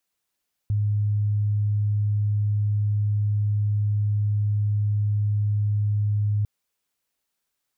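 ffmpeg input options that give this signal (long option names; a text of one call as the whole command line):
ffmpeg -f lavfi -i "sine=frequency=104:duration=5.75:sample_rate=44100,volume=-1.44dB" out.wav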